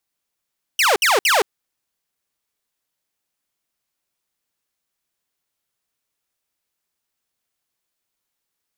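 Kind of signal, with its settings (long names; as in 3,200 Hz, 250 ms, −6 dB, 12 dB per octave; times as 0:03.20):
repeated falling chirps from 3,100 Hz, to 360 Hz, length 0.17 s saw, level −10.5 dB, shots 3, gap 0.06 s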